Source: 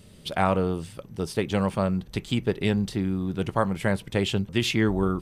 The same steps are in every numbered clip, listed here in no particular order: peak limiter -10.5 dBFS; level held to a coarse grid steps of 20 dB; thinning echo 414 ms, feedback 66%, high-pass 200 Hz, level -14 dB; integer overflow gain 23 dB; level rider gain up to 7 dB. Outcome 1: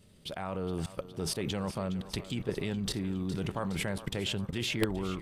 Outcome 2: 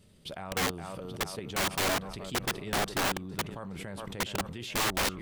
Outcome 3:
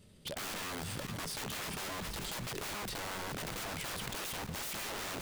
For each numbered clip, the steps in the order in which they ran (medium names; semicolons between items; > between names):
peak limiter > level held to a coarse grid > integer overflow > level rider > thinning echo; thinning echo > level rider > peak limiter > level held to a coarse grid > integer overflow; peak limiter > level rider > integer overflow > thinning echo > level held to a coarse grid